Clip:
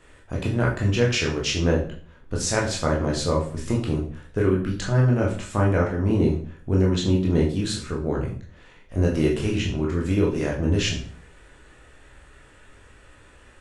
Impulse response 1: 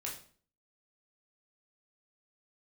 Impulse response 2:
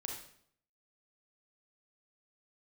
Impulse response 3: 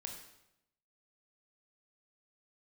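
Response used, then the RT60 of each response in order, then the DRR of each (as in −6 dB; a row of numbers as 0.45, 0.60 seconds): 1; 0.45, 0.65, 0.85 seconds; −3.0, 0.0, 2.0 decibels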